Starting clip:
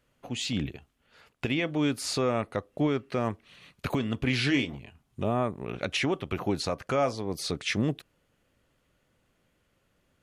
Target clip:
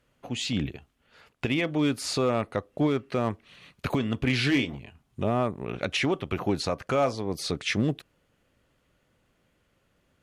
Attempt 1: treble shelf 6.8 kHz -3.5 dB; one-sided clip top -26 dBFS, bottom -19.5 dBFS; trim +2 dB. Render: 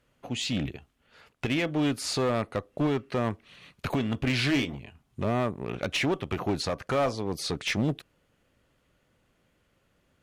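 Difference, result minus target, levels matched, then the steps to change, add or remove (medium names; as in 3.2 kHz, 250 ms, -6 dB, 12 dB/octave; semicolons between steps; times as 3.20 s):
one-sided clip: distortion +10 dB
change: one-sided clip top -18 dBFS, bottom -19.5 dBFS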